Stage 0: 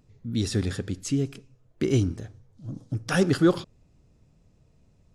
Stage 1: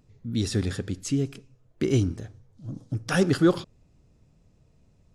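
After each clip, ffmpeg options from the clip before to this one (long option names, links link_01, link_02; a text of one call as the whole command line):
ffmpeg -i in.wav -af anull out.wav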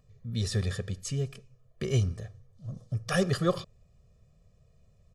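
ffmpeg -i in.wav -af "aecho=1:1:1.7:0.98,volume=-5.5dB" out.wav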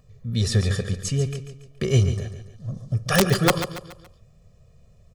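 ffmpeg -i in.wav -af "aeval=exprs='(mod(5.96*val(0)+1,2)-1)/5.96':channel_layout=same,aecho=1:1:141|282|423|564:0.299|0.125|0.0527|0.0221,volume=7.5dB" out.wav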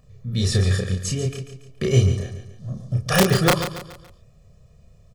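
ffmpeg -i in.wav -filter_complex "[0:a]asplit=2[link_01][link_02];[link_02]adelay=32,volume=-2.5dB[link_03];[link_01][link_03]amix=inputs=2:normalize=0" out.wav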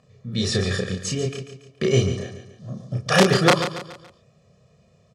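ffmpeg -i in.wav -af "highpass=170,lowpass=6700,volume=2.5dB" out.wav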